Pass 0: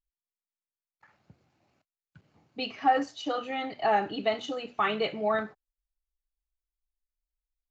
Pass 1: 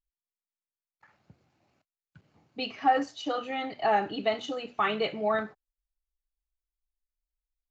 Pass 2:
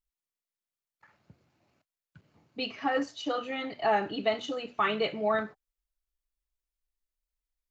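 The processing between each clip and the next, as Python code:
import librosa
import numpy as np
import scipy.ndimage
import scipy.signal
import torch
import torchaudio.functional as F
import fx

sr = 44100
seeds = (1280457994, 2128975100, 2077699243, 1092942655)

y1 = x
y2 = fx.notch(y1, sr, hz=780.0, q=12.0)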